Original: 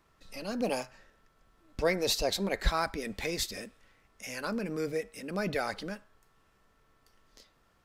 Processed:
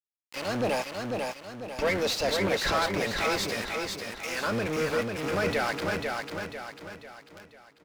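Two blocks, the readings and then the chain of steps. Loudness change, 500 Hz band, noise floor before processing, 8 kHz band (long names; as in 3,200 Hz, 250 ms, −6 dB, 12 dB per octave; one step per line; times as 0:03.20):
+4.0 dB, +5.0 dB, −69 dBFS, +2.0 dB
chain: sub-octave generator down 1 octave, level +1 dB
centre clipping without the shift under −39 dBFS
mid-hump overdrive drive 22 dB, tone 2,900 Hz, clips at −14 dBFS
on a send: repeating echo 495 ms, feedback 44%, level −4 dB
on the sum: level −3.5 dB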